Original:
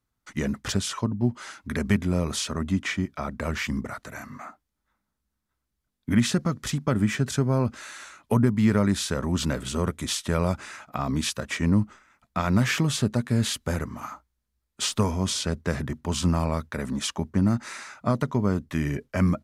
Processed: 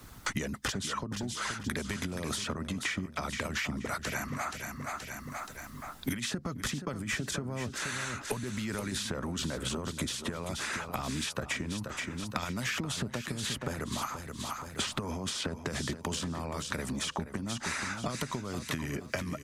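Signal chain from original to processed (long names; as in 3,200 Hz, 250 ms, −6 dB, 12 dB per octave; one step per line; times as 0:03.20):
brickwall limiter −21 dBFS, peak gain reduction 11.5 dB
downward compressor, threshold −32 dBFS, peak gain reduction 8 dB
harmonic and percussive parts rebalanced harmonic −9 dB
on a send: repeating echo 476 ms, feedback 29%, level −11.5 dB
on the sum: multiband upward and downward compressor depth 100%
level +4 dB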